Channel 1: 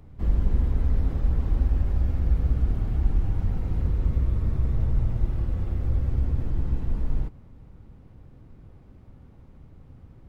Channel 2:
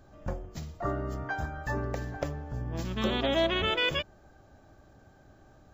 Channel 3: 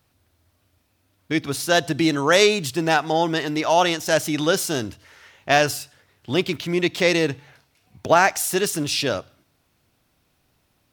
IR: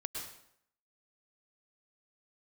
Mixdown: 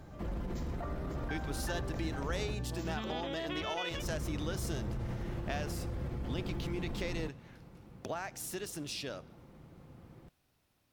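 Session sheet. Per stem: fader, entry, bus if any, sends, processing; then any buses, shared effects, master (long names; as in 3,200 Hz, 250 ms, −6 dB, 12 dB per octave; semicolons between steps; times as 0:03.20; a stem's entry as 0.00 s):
+2.0 dB, 0.00 s, muted 0:02.55–0:03.94, bus A, no send, high-pass filter 240 Hz 6 dB per octave; comb filter 5.8 ms, depth 30%
+1.5 dB, 0.00 s, bus A, no send, downward compressor, threshold −34 dBFS, peak gain reduction 12 dB
−9.0 dB, 0.00 s, no bus, no send, downward compressor 4 to 1, threshold −30 dBFS, peak gain reduction 16 dB
bus A: 0.0 dB, brickwall limiter −30.5 dBFS, peak gain reduction 11 dB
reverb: not used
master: no processing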